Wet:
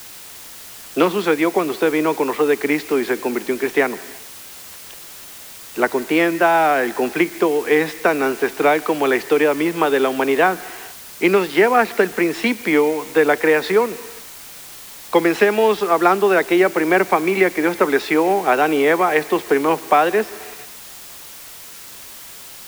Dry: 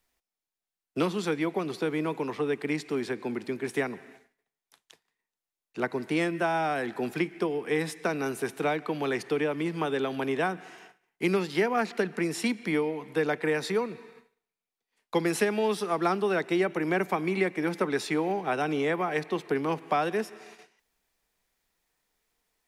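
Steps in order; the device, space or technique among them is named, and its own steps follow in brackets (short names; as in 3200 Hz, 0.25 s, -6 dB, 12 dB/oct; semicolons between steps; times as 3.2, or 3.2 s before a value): dictaphone (BPF 300–3200 Hz; AGC gain up to 11.5 dB; wow and flutter 27 cents; white noise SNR 19 dB); gain +2 dB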